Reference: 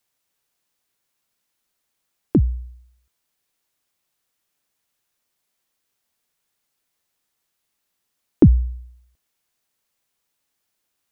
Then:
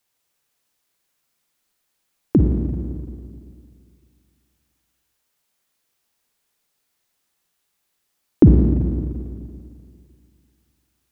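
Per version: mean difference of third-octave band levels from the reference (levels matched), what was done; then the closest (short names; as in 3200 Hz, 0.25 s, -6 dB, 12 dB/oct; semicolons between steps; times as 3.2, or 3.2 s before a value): 4.5 dB: Schroeder reverb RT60 2.3 s, DRR 2 dB; gain +1 dB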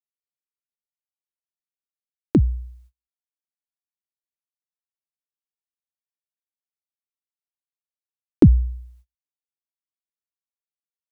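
2.0 dB: gate -50 dBFS, range -36 dB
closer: second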